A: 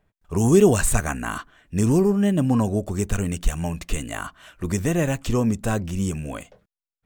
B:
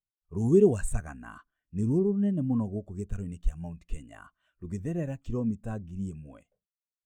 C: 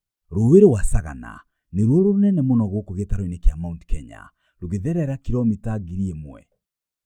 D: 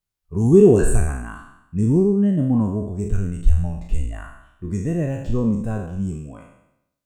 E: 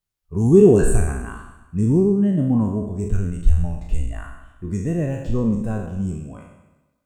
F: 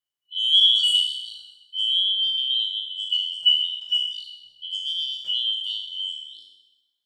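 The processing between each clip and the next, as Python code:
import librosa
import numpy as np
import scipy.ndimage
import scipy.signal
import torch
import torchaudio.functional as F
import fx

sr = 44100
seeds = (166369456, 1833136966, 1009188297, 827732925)

y1 = fx.spectral_expand(x, sr, expansion=1.5)
y1 = y1 * 10.0 ** (-5.5 / 20.0)
y2 = fx.low_shelf(y1, sr, hz=230.0, db=4.5)
y2 = y2 * 10.0 ** (7.0 / 20.0)
y3 = fx.spec_trails(y2, sr, decay_s=0.82)
y3 = y3 * 10.0 ** (-1.0 / 20.0)
y4 = fx.echo_feedback(y3, sr, ms=127, feedback_pct=53, wet_db=-16)
y5 = fx.band_shuffle(y4, sr, order='3412')
y5 = y5 * 10.0 ** (-6.0 / 20.0)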